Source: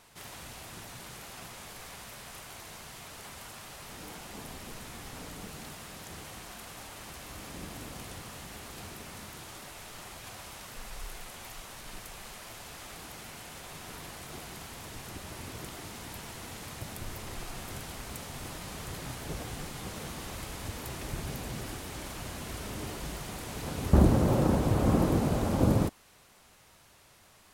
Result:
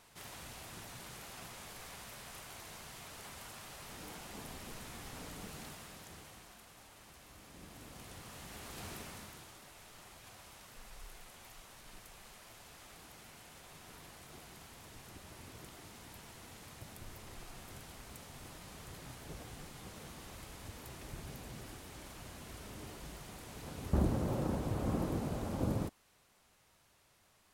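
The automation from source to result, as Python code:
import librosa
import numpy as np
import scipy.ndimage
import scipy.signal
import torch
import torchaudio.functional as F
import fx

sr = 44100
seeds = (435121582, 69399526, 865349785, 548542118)

y = fx.gain(x, sr, db=fx.line((5.61, -4.0), (6.67, -12.5), (7.48, -12.5), (8.94, -1.5), (9.57, -10.0)))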